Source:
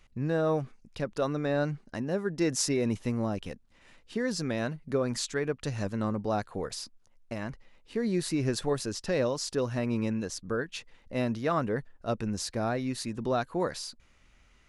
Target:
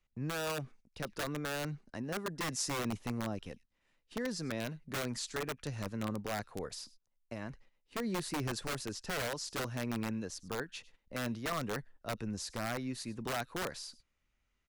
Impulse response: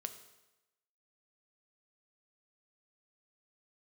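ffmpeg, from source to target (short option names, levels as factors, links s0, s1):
-filter_complex "[0:a]agate=range=0.251:threshold=0.00316:ratio=16:detection=peak,acrossover=split=210|870|1900[s0][s1][s2][s3];[s1]aeval=exprs='(mod(18.8*val(0)+1,2)-1)/18.8':c=same[s4];[s3]aecho=1:1:101:0.106[s5];[s0][s4][s2][s5]amix=inputs=4:normalize=0,volume=0.473"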